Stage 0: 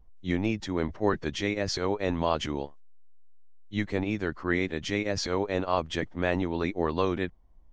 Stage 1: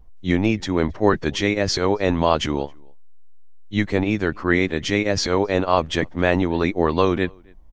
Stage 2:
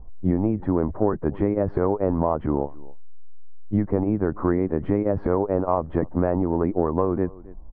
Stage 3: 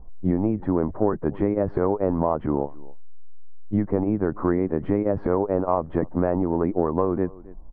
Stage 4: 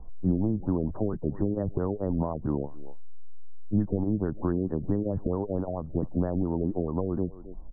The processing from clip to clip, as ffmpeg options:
-filter_complex "[0:a]asplit=2[a][b];[b]adelay=268.2,volume=-29dB,highshelf=f=4k:g=-6.04[c];[a][c]amix=inputs=2:normalize=0,volume=8.5dB"
-af "lowpass=f=1.1k:w=0.5412,lowpass=f=1.1k:w=1.3066,acompressor=threshold=-25dB:ratio=6,volume=7.5dB"
-af "equalizer=f=67:t=o:w=1:g=-5.5"
-filter_complex "[0:a]acrossover=split=220[a][b];[b]acompressor=threshold=-34dB:ratio=2.5[c];[a][c]amix=inputs=2:normalize=0,afftfilt=real='re*lt(b*sr/1024,680*pow(2000/680,0.5+0.5*sin(2*PI*4.5*pts/sr)))':imag='im*lt(b*sr/1024,680*pow(2000/680,0.5+0.5*sin(2*PI*4.5*pts/sr)))':win_size=1024:overlap=0.75"

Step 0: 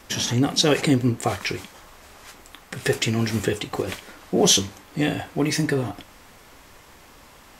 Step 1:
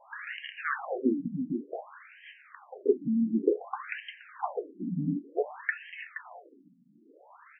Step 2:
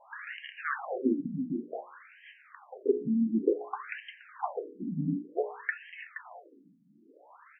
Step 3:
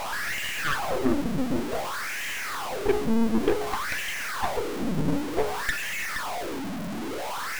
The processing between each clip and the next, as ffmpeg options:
-filter_complex "[0:a]asplit=2[a][b];[b]aecho=0:1:473:0.316[c];[a][c]amix=inputs=2:normalize=0,afftfilt=real='re*between(b*sr/1024,200*pow(2300/200,0.5+0.5*sin(2*PI*0.55*pts/sr))/1.41,200*pow(2300/200,0.5+0.5*sin(2*PI*0.55*pts/sr))*1.41)':imag='im*between(b*sr/1024,200*pow(2300/200,0.5+0.5*sin(2*PI*0.55*pts/sr))/1.41,200*pow(2300/200,0.5+0.5*sin(2*PI*0.55*pts/sr))*1.41)':win_size=1024:overlap=0.75"
-af "highshelf=f=2.8k:g=-7,bandreject=f=60:t=h:w=6,bandreject=f=120:t=h:w=6,bandreject=f=180:t=h:w=6,bandreject=f=240:t=h:w=6,bandreject=f=300:t=h:w=6,bandreject=f=360:t=h:w=6,bandreject=f=420:t=h:w=6,bandreject=f=480:t=h:w=6,bandreject=f=540:t=h:w=6"
-af "aeval=exprs='val(0)+0.5*0.0447*sgn(val(0))':c=same,aeval=exprs='0.251*(cos(1*acos(clip(val(0)/0.251,-1,1)))-cos(1*PI/2))+0.0447*(cos(8*acos(clip(val(0)/0.251,-1,1)))-cos(8*PI/2))':c=same"

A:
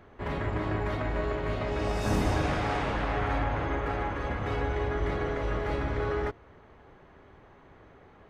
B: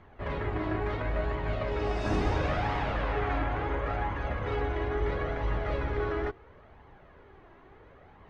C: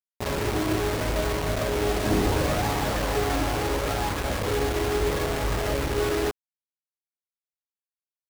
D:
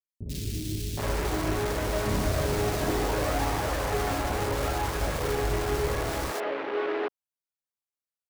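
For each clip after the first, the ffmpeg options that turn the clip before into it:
-af "lowpass=4.5k,areverse,acompressor=mode=upward:threshold=-49dB:ratio=2.5,areverse,flanger=delay=0.9:depth=2.2:regen=45:speed=0.73:shape=triangular,volume=3dB"
-af "equalizer=f=220:t=o:w=2.9:g=5.5,acrusher=bits=4:mix=0:aa=0.000001,equalizer=f=450:t=o:w=2:g=2.5"
-filter_complex "[0:a]acrossover=split=280|3100[a][b][c];[c]adelay=90[d];[b]adelay=770[e];[a][e][d]amix=inputs=3:normalize=0,volume=-1.5dB"

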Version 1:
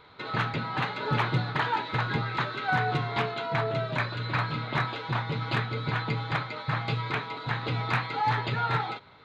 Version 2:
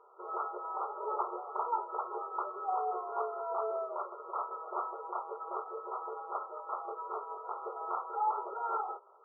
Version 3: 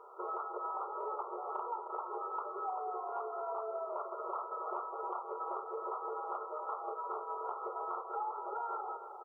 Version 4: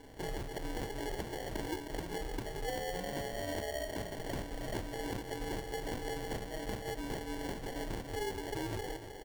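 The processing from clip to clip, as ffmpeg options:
-af "afftfilt=real='re*between(b*sr/4096,350,1400)':imag='im*between(b*sr/4096,350,1400)':win_size=4096:overlap=0.75,volume=-4dB"
-filter_complex "[0:a]acompressor=threshold=-43dB:ratio=10,asplit=2[a][b];[b]adelay=311,lowpass=f=980:p=1,volume=-7dB,asplit=2[c][d];[d]adelay=311,lowpass=f=980:p=1,volume=0.51,asplit=2[e][f];[f]adelay=311,lowpass=f=980:p=1,volume=0.51,asplit=2[g][h];[h]adelay=311,lowpass=f=980:p=1,volume=0.51,asplit=2[i][j];[j]adelay=311,lowpass=f=980:p=1,volume=0.51,asplit=2[k][l];[l]adelay=311,lowpass=f=980:p=1,volume=0.51[m];[a][c][e][g][i][k][m]amix=inputs=7:normalize=0,volume=6.5dB"
-af "acrusher=samples=35:mix=1:aa=0.000001,volume=1dB"

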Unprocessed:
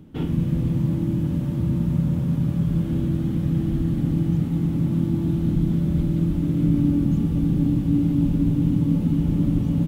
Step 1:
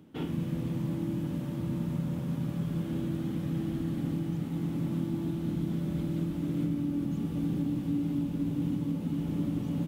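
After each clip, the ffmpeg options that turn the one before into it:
-af "highpass=f=340:p=1,alimiter=limit=-18.5dB:level=0:latency=1:release=418,volume=-3dB"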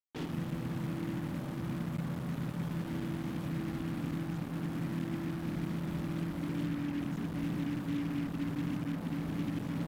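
-af "acrusher=bits=5:mix=0:aa=0.5,volume=-4.5dB"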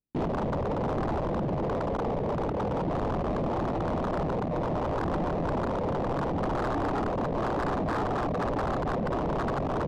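-filter_complex "[0:a]acrossover=split=360[a][b];[a]aeval=exprs='0.0473*sin(PI/2*5.62*val(0)/0.0473)':c=same[c];[c][b]amix=inputs=2:normalize=0,adynamicsmooth=sensitivity=7.5:basefreq=790,volume=1.5dB"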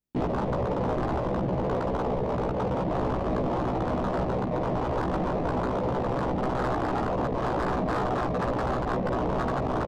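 -filter_complex "[0:a]asplit=2[a][b];[b]adelay=16,volume=-3.5dB[c];[a][c]amix=inputs=2:normalize=0"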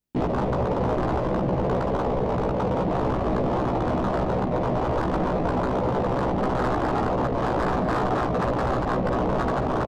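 -filter_complex "[0:a]asplit=2[a][b];[b]adelay=221.6,volume=-10dB,highshelf=f=4k:g=-4.99[c];[a][c]amix=inputs=2:normalize=0,volume=3dB"

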